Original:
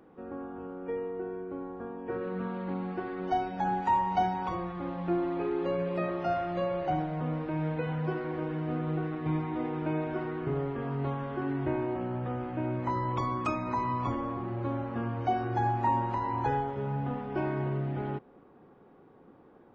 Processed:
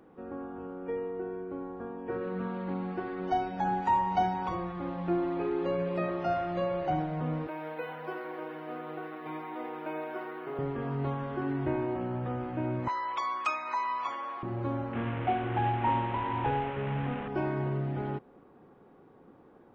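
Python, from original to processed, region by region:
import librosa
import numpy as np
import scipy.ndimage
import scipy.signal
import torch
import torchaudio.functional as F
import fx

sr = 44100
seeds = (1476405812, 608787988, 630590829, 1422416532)

y = fx.chain(x, sr, fx.highpass(hz=480.0, slope=12),
    fx.resample_linear(factor=3), at=(7.47, 10.59))
y = fx.chain(y, sr, fx.highpass(hz=870.0, slope=12),
    fx.peak_eq(hz=2800.0, db=5.5, octaves=2.6), at=(12.88, 14.43))
y = fx.chain(y, sr, fx.delta_mod(bps=16000, step_db=-30.5),
    fx.air_absorb(metres=190.0), at=(14.93, 17.28))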